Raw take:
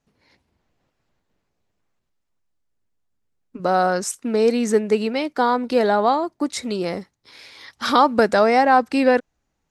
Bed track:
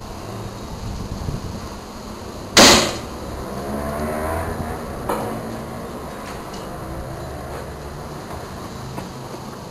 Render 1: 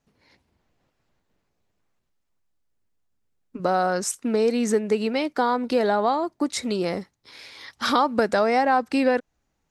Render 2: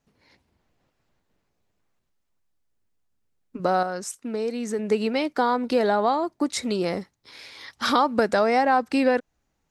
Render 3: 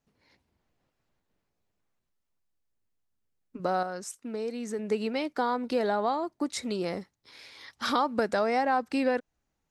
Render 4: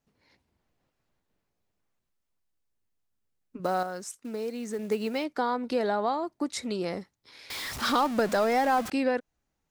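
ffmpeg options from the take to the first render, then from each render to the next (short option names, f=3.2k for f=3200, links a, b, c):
-af "acompressor=threshold=-20dB:ratio=2"
-filter_complex "[0:a]asplit=3[a][b][c];[a]atrim=end=3.832[d];[b]atrim=start=3.828:end=4.792,asetpts=PTS-STARTPTS,volume=-6.5dB[e];[c]atrim=start=4.788[f];[d][e]acrossfade=d=0.004:c1=hsin:c2=hsin[g];[g][f]acrossfade=d=0.004:c1=hsin:c2=hsin"
-af "volume=-6dB"
-filter_complex "[0:a]asettb=1/sr,asplit=3[a][b][c];[a]atrim=end=3.644[d];[b]atrim=start=3.64:end=5.24,asetpts=PTS-STARTPTS,afade=t=in:d=0.004:c=qsin,afade=t=out:st=1.596:d=0.004:c=qsin,acrusher=bits=6:mode=log:mix=0:aa=0.000001[e];[c]atrim=start=5.236[f];[d][e]acrossfade=d=0.004:c1=hsin:c2=qsin[g];[g][f]acrossfade=d=0.004:c1=qsin:c2=hsin,asettb=1/sr,asplit=3[h][i][j];[h]atrim=end=7.504[k];[i]atrim=start=7.5:end=8.9,asetpts=PTS-STARTPTS,afade=t=in:d=0.004:c=qsin,afade=t=out:st=1.396:d=0.004:c=qsin,aeval=exprs='val(0)+0.5*0.0266*sgn(val(0))':c=same[l];[j]atrim=start=8.896[m];[k][l]acrossfade=d=0.004:c1=hsin:c2=qsin[n];[n][m]acrossfade=d=0.004:c1=qsin:c2=hsin"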